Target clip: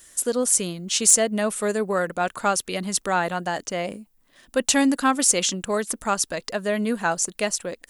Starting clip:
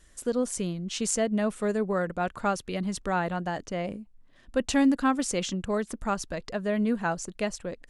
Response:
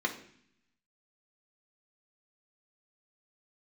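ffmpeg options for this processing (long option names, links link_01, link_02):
-af "aemphasis=mode=production:type=bsi,acontrast=77,volume=-1dB"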